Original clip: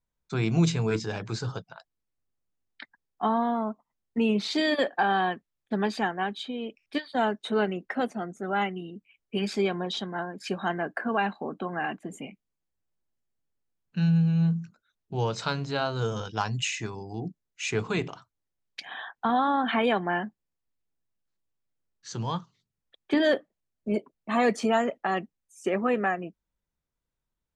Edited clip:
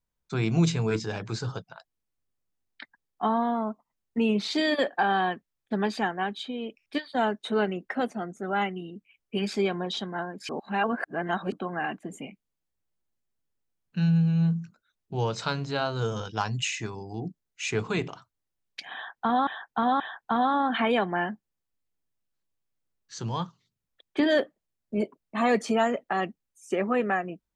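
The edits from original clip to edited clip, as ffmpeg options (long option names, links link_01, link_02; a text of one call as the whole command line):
ffmpeg -i in.wav -filter_complex "[0:a]asplit=5[link_01][link_02][link_03][link_04][link_05];[link_01]atrim=end=10.492[link_06];[link_02]atrim=start=10.488:end=11.522,asetpts=PTS-STARTPTS,areverse[link_07];[link_03]atrim=start=11.518:end=19.472[link_08];[link_04]atrim=start=18.938:end=19.472[link_09];[link_05]atrim=start=18.938[link_10];[link_06][link_07]acrossfade=duration=0.004:curve1=hsin:curve2=hsin[link_11];[link_11][link_08]acrossfade=duration=0.004:curve1=hsin:curve2=hsin[link_12];[link_12][link_09]acrossfade=duration=0.004:curve1=hsin:curve2=hsin[link_13];[link_13][link_10]acrossfade=duration=0.004:curve1=hsin:curve2=hsin" out.wav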